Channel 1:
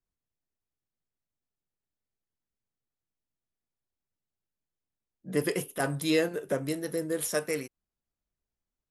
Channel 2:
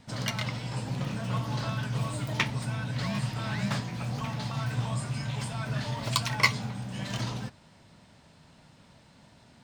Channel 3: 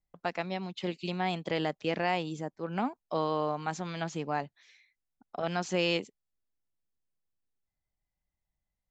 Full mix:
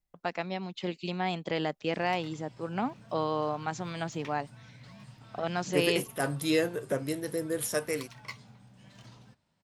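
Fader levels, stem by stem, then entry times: −1.0, −19.5, 0.0 decibels; 0.40, 1.85, 0.00 seconds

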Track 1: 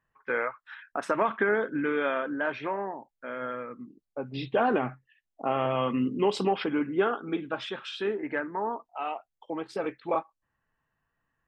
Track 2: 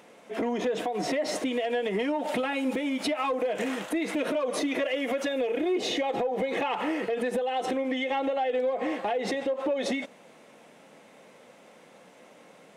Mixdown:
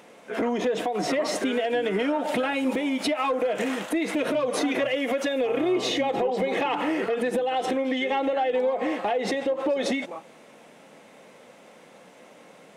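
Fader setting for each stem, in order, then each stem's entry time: −10.5, +3.0 decibels; 0.00, 0.00 seconds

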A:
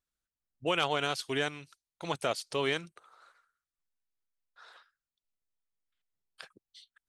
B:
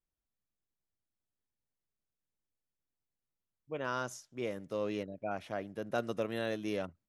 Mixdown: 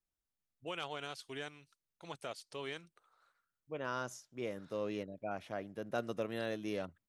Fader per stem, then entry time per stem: −12.5, −3.0 decibels; 0.00, 0.00 seconds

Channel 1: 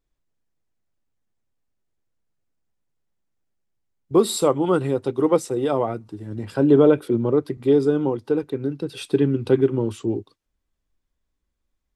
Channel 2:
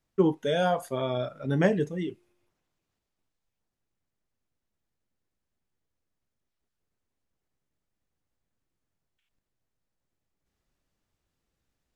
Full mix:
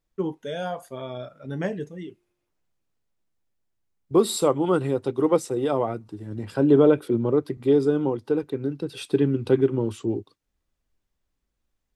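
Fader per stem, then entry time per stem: −2.0, −5.0 decibels; 0.00, 0.00 seconds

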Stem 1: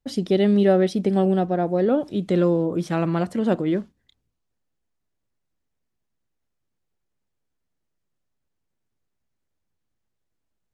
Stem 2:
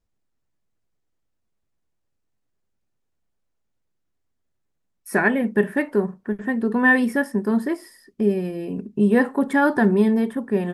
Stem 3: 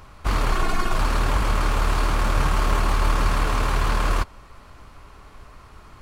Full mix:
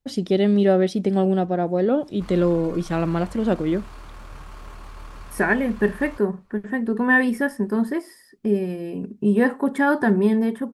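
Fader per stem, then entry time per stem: 0.0, −1.0, −19.5 decibels; 0.00, 0.25, 1.95 seconds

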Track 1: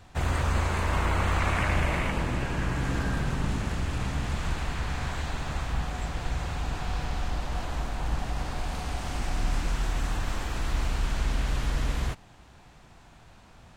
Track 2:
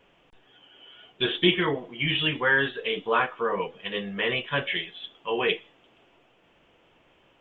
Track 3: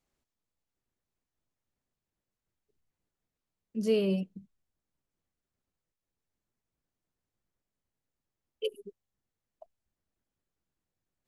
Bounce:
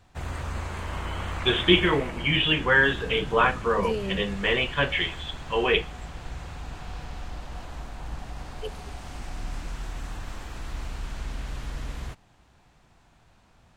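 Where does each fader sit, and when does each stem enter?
−6.5, +2.5, −3.5 decibels; 0.00, 0.25, 0.00 seconds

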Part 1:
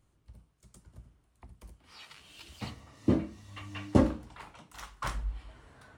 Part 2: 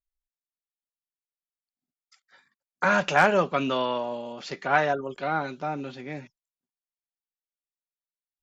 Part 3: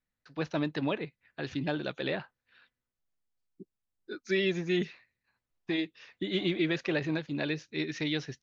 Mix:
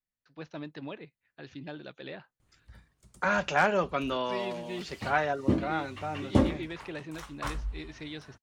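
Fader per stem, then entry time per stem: 0.0, −5.0, −9.5 decibels; 2.40, 0.40, 0.00 seconds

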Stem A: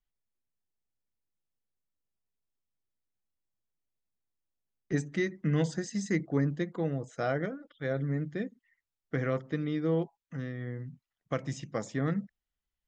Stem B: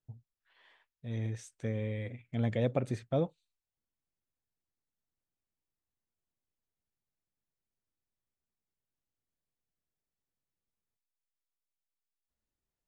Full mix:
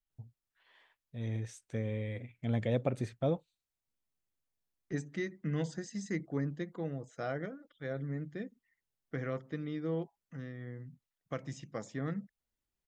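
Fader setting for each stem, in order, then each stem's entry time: −6.5, −1.0 decibels; 0.00, 0.10 seconds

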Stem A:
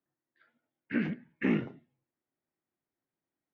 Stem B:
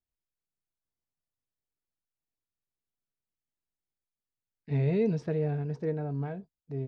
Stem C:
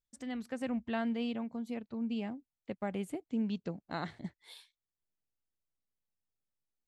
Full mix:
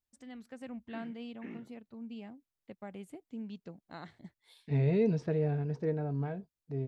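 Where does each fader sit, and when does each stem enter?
−18.5, −1.0, −8.5 decibels; 0.00, 0.00, 0.00 seconds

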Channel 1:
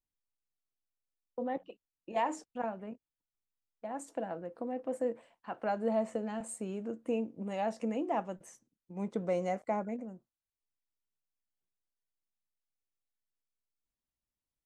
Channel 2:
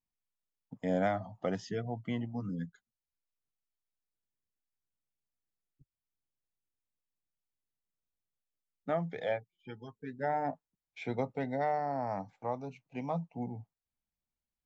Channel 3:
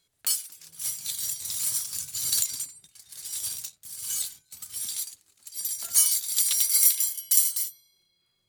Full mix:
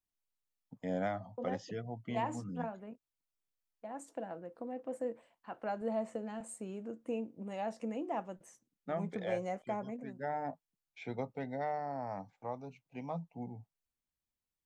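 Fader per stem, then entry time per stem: −4.5 dB, −5.0 dB, muted; 0.00 s, 0.00 s, muted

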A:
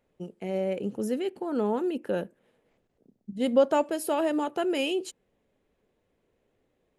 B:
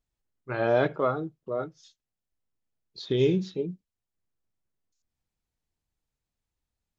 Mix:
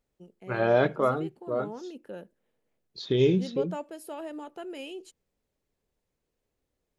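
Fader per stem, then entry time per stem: −12.0, +1.0 decibels; 0.00, 0.00 seconds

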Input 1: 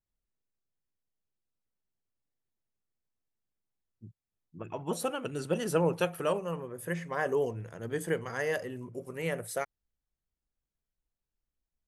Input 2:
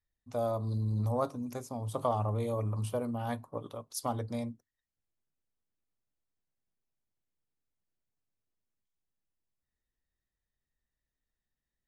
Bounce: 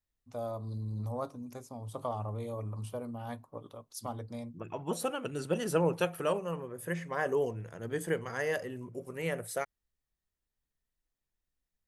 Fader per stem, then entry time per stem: −1.0, −5.5 decibels; 0.00, 0.00 seconds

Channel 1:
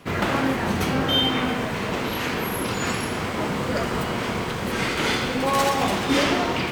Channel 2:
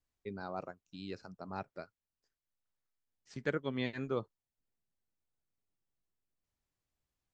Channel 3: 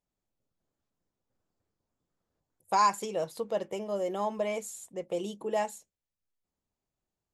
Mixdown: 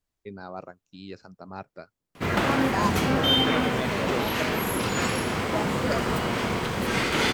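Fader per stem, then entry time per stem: −0.5, +3.0, −4.5 decibels; 2.15, 0.00, 0.00 seconds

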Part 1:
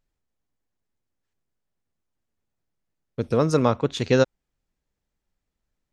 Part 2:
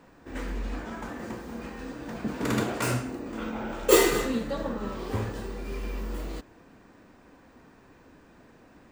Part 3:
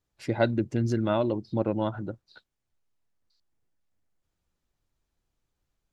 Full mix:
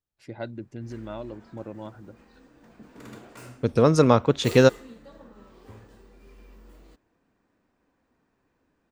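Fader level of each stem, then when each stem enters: +2.5, −17.0, −11.0 decibels; 0.45, 0.55, 0.00 seconds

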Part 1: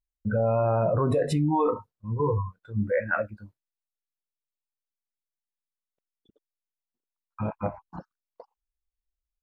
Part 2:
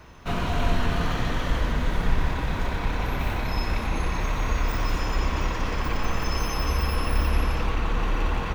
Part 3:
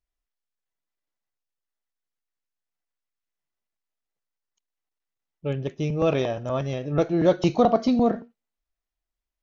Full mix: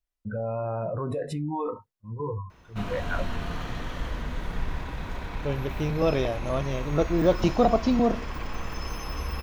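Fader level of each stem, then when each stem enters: −6.5, −7.5, −2.0 decibels; 0.00, 2.50, 0.00 seconds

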